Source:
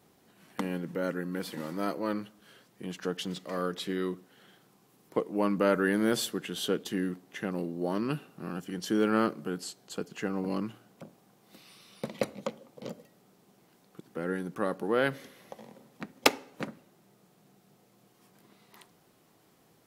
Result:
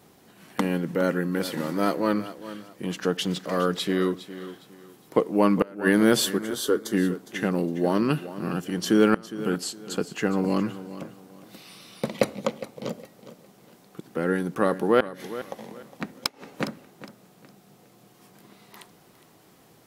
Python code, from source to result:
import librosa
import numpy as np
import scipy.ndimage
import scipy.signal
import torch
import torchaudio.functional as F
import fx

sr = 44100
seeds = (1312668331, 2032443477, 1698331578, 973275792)

y = fx.fixed_phaser(x, sr, hz=690.0, stages=6, at=(6.37, 6.92), fade=0.02)
y = fx.gate_flip(y, sr, shuts_db=-13.0, range_db=-29)
y = fx.echo_feedback(y, sr, ms=410, feedback_pct=28, wet_db=-14.5)
y = F.gain(torch.from_numpy(y), 8.0).numpy()